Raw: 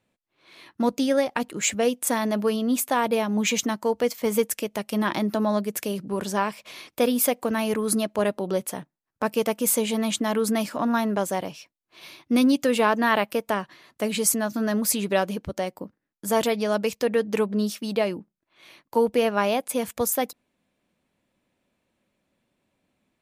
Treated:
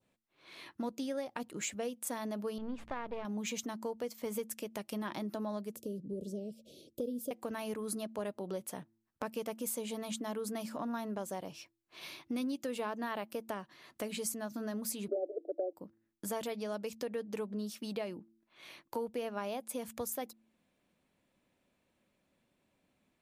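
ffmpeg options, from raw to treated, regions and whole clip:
ffmpeg -i in.wav -filter_complex "[0:a]asettb=1/sr,asplit=3[link_01][link_02][link_03];[link_01]atrim=end=2.584[link_04];[link_02]atrim=start=2.58:end=3.25,asetpts=PTS-STARTPTS,afade=type=in:duration=0.004:curve=qsin,afade=type=out:start_time=0.666:duration=0.004:curve=qsin,aeval=exprs='if(lt(val(0),0),0.251*val(0),val(0))':channel_layout=same,lowpass=2600,aeval=exprs='val(0)+0.00355*(sin(2*PI*60*n/s)+sin(2*PI*2*60*n/s)/2+sin(2*PI*3*60*n/s)/3+sin(2*PI*4*60*n/s)/4+sin(2*PI*5*60*n/s)/5)':channel_layout=same[link_05];[link_03]atrim=start=3.246[link_06];[link_04][link_05]acrossfade=duration=0.004:curve1=hsin:curve2=qsin[link_07];[link_07][link_06]acrossfade=duration=0.004:curve1=qsin:curve2=hsin,asettb=1/sr,asplit=3[link_08][link_09][link_10];[link_08]atrim=end=5.764[link_11];[link_09]atrim=start=5.76:end=7.31,asetpts=PTS-STARTPTS,afade=type=in:duration=0.004:curve=qsin,afade=type=out:start_time=1.546:duration=0.004:curve=qsin,asuperstop=centerf=1300:order=12:qfactor=0.53,highshelf=frequency=2000:width_type=q:width=1.5:gain=-11.5[link_12];[link_10]atrim=start=7.306[link_13];[link_11][link_12]acrossfade=duration=0.004:curve1=hsin:curve2=qsin[link_14];[link_14][link_13]acrossfade=duration=0.004:curve1=qsin:curve2=hsin,asettb=1/sr,asplit=3[link_15][link_16][link_17];[link_15]atrim=end=15.084[link_18];[link_16]atrim=start=15.08:end=15.73,asetpts=PTS-STARTPTS,afade=type=in:duration=0.004:curve=qsin,afade=type=out:start_time=0.646:duration=0.004:curve=qsin,aeval=exprs='0.376*sin(PI/2*3.16*val(0)/0.376)':channel_layout=same,asuperpass=centerf=460:order=20:qfactor=1.1[link_19];[link_17]atrim=start=15.726[link_20];[link_18][link_19]acrossfade=duration=0.004:curve1=hsin:curve2=qsin[link_21];[link_21][link_20]acrossfade=duration=0.004:curve1=qsin:curve2=hsin,bandreject=frequency=111.4:width_type=h:width=4,bandreject=frequency=222.8:width_type=h:width=4,bandreject=frequency=334.2:width_type=h:width=4,adynamicequalizer=threshold=0.01:dfrequency=2100:dqfactor=1:tfrequency=2100:tqfactor=1:attack=5:release=100:ratio=0.375:range=2.5:mode=cutabove:tftype=bell,acompressor=threshold=-39dB:ratio=2.5,volume=-2.5dB" out.wav

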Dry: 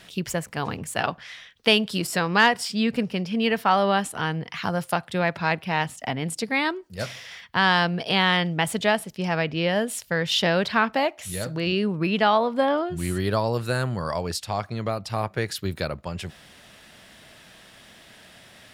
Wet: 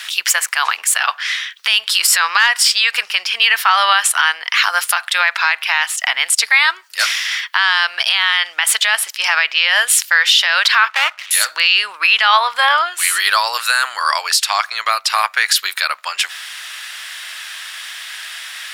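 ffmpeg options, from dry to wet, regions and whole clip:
ffmpeg -i in.wav -filter_complex "[0:a]asettb=1/sr,asplit=3[link_01][link_02][link_03];[link_01]atrim=end=10.904[link_04];[link_02]atrim=start=10.9:end=11.31,asetpts=PTS-STARTPTS,afade=type=in:duration=0.004:curve=qsin,afade=type=out:start_time=0.406:duration=0.004:curve=qsin,lowpass=frequency=3200:width=0.5412,lowpass=frequency=3200:width=1.3066,aeval=exprs='max(val(0),0)':channel_layout=same,tremolo=f=180:d=0.4[link_05];[link_03]atrim=start=11.306[link_06];[link_04][link_05]acrossfade=duration=0.004:curve1=hsin:curve2=qsin[link_07];[link_07][link_06]acrossfade=duration=0.004:curve1=qsin:curve2=hsin,highpass=frequency=1200:width=0.5412,highpass=frequency=1200:width=1.3066,acompressor=threshold=-25dB:ratio=6,alimiter=level_in=22dB:limit=-1dB:release=50:level=0:latency=1,volume=-1dB" out.wav

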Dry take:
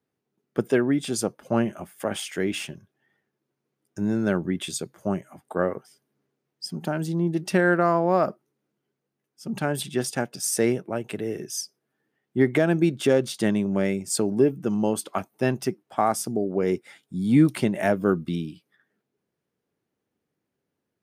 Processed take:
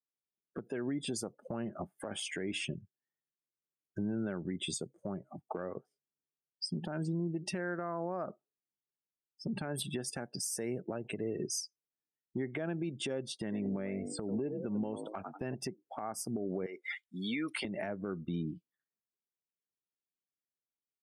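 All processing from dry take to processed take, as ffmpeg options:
ffmpeg -i in.wav -filter_complex "[0:a]asettb=1/sr,asplit=3[link_01][link_02][link_03];[link_01]atrim=end=13.344[link_04];[link_02]atrim=start=13.34:end=15.55,asetpts=PTS-STARTPTS,afade=type=in:duration=0.004:curve=qsin,afade=type=out:start_time=2.206:duration=0.004:curve=qsin,acrossover=split=2900[link_05][link_06];[link_06]acompressor=threshold=-41dB:ratio=4:attack=1:release=60[link_07];[link_05][link_07]amix=inputs=2:normalize=0,asplit=4[link_08][link_09][link_10][link_11];[link_09]adelay=93,afreqshift=49,volume=-12dB[link_12];[link_10]adelay=186,afreqshift=98,volume=-22.2dB[link_13];[link_11]adelay=279,afreqshift=147,volume=-32.3dB[link_14];[link_08][link_12][link_13][link_14]amix=inputs=4:normalize=0,atrim=end_sample=97461[link_15];[link_03]atrim=start=15.546[link_16];[link_04][link_15]acrossfade=duration=0.004:curve1=hsin:curve2=qsin[link_17];[link_17][link_16]acrossfade=duration=0.004:curve1=qsin:curve2=hsin,asettb=1/sr,asplit=3[link_18][link_19][link_20];[link_18]atrim=end=16.664[link_21];[link_19]atrim=start=16.66:end=17.65,asetpts=PTS-STARTPTS,afade=type=in:duration=0.004:curve=qsin,afade=type=out:start_time=0.986:duration=0.004:curve=qsin,highpass=frequency=1100:poles=1,acompressor=threshold=-37dB:ratio=4:attack=3.2:release=140:knee=1:detection=peak,asplit=2[link_22][link_23];[link_23]highpass=frequency=720:poles=1,volume=15dB,asoftclip=type=tanh:threshold=-21dB[link_24];[link_22][link_24]amix=inputs=2:normalize=0,lowpass=frequency=6500:poles=1,volume=-6dB[link_25];[link_20]atrim=start=17.646[link_26];[link_21][link_25]acrossfade=duration=0.004:curve1=hsin:curve2=qsin[link_27];[link_27][link_26]acrossfade=duration=0.004:curve1=qsin:curve2=hsin,afftdn=noise_reduction=32:noise_floor=-39,acompressor=threshold=-32dB:ratio=6,alimiter=level_in=6dB:limit=-24dB:level=0:latency=1:release=154,volume=-6dB,volume=3dB" out.wav

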